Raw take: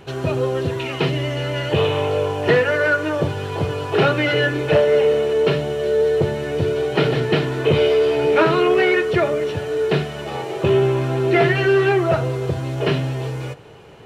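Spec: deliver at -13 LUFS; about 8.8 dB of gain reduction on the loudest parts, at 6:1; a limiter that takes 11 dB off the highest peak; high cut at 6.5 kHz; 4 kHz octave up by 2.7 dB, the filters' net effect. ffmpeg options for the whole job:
-af "lowpass=6500,equalizer=f=4000:t=o:g=4.5,acompressor=threshold=0.0891:ratio=6,volume=6.68,alimiter=limit=0.531:level=0:latency=1"

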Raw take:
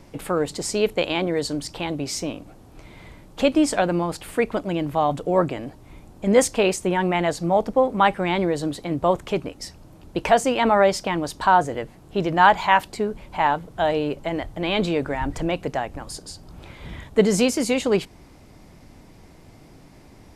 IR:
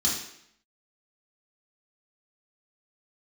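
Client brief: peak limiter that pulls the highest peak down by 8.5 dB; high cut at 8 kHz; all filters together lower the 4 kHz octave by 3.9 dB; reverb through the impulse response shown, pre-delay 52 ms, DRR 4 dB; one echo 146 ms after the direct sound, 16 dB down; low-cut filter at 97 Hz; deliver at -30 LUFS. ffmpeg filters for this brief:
-filter_complex "[0:a]highpass=97,lowpass=8000,equalizer=f=4000:t=o:g=-5.5,alimiter=limit=0.282:level=0:latency=1,aecho=1:1:146:0.158,asplit=2[s0][s1];[1:a]atrim=start_sample=2205,adelay=52[s2];[s1][s2]afir=irnorm=-1:irlink=0,volume=0.224[s3];[s0][s3]amix=inputs=2:normalize=0,volume=0.422"

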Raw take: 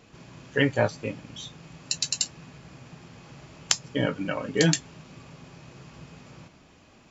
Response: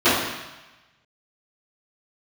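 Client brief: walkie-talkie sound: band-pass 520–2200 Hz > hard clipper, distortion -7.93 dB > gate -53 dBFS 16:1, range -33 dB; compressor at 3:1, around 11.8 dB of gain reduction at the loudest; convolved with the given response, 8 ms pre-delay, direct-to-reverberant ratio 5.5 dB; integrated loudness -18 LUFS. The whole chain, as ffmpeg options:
-filter_complex "[0:a]acompressor=threshold=0.02:ratio=3,asplit=2[s0][s1];[1:a]atrim=start_sample=2205,adelay=8[s2];[s1][s2]afir=irnorm=-1:irlink=0,volume=0.0355[s3];[s0][s3]amix=inputs=2:normalize=0,highpass=520,lowpass=2200,asoftclip=type=hard:threshold=0.0126,agate=range=0.0224:threshold=0.00224:ratio=16,volume=29.9"

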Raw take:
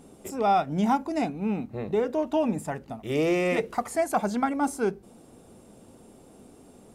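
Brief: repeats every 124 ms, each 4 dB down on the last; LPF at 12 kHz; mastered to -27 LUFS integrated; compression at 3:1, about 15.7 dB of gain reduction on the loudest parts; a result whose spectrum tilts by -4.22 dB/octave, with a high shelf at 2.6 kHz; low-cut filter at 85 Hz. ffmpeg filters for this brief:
-af "highpass=85,lowpass=12000,highshelf=f=2600:g=-4,acompressor=threshold=0.00794:ratio=3,aecho=1:1:124|248|372|496|620|744|868|992|1116:0.631|0.398|0.25|0.158|0.0994|0.0626|0.0394|0.0249|0.0157,volume=4.47"

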